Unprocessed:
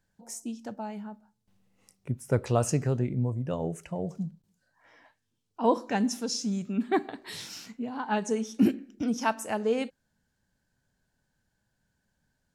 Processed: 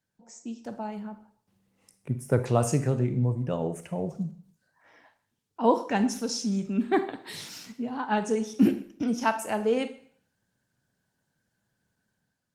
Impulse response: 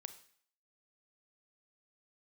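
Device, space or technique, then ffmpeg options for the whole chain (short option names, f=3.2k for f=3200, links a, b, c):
far-field microphone of a smart speaker: -filter_complex "[1:a]atrim=start_sample=2205[a];[0:a][a]afir=irnorm=-1:irlink=0,highpass=f=91:w=0.5412,highpass=f=91:w=1.3066,dynaudnorm=f=110:g=9:m=7dB" -ar 48000 -c:a libopus -b:a 24k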